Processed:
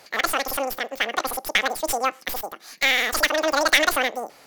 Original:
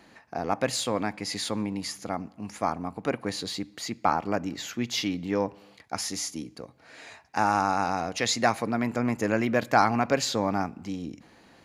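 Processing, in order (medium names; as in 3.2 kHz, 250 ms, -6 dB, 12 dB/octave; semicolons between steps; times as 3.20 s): tracing distortion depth 0.16 ms; wide varispeed 2.61×; trim +5 dB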